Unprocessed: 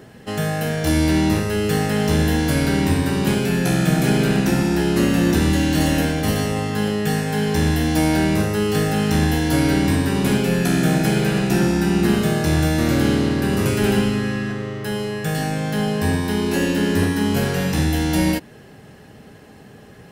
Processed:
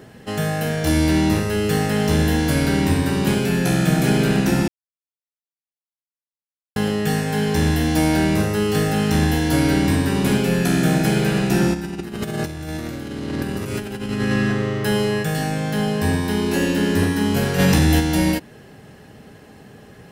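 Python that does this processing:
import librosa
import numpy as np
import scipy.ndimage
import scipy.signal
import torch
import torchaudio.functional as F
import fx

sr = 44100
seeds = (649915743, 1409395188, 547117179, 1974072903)

y = fx.over_compress(x, sr, threshold_db=-23.0, ratio=-0.5, at=(11.73, 15.22), fade=0.02)
y = fx.env_flatten(y, sr, amount_pct=100, at=(17.58, 17.99), fade=0.02)
y = fx.edit(y, sr, fx.silence(start_s=4.68, length_s=2.08), tone=tone)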